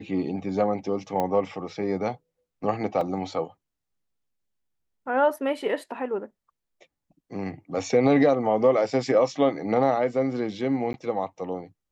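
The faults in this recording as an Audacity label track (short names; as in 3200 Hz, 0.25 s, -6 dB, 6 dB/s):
1.200000	1.200000	pop -14 dBFS
3.010000	3.010000	gap 2.9 ms
10.930000	10.940000	gap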